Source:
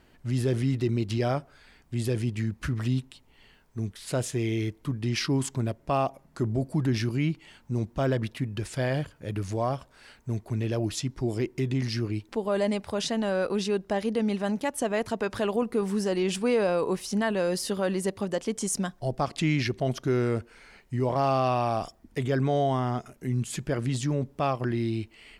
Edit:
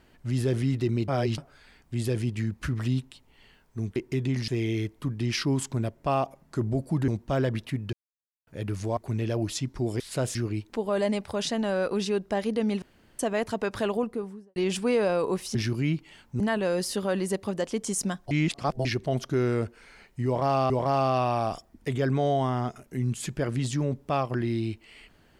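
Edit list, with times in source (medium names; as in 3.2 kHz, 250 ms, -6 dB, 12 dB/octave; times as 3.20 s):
1.08–1.38 s: reverse
3.96–4.31 s: swap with 11.42–11.94 s
6.91–7.76 s: move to 17.14 s
8.61–9.15 s: mute
9.65–10.39 s: delete
14.41–14.78 s: room tone
15.44–16.15 s: studio fade out
19.05–19.59 s: reverse
21.00–21.44 s: loop, 2 plays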